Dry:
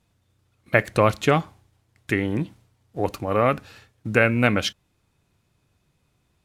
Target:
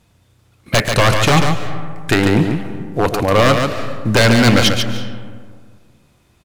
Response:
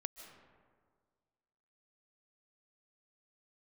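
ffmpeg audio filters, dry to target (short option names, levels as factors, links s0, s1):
-filter_complex "[0:a]acontrast=53,aeval=exprs='0.266*(abs(mod(val(0)/0.266+3,4)-2)-1)':c=same,asplit=2[s0][s1];[s1]adelay=105,volume=0.112,highshelf=f=4000:g=-2.36[s2];[s0][s2]amix=inputs=2:normalize=0,asplit=2[s3][s4];[1:a]atrim=start_sample=2205,adelay=141[s5];[s4][s5]afir=irnorm=-1:irlink=0,volume=0.794[s6];[s3][s6]amix=inputs=2:normalize=0,volume=1.88"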